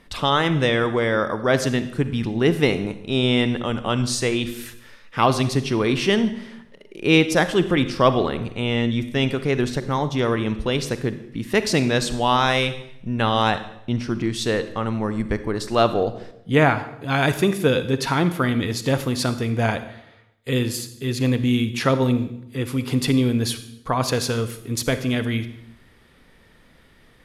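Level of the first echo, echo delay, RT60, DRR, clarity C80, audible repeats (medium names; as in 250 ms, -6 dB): no echo, no echo, 0.75 s, 11.0 dB, 15.0 dB, no echo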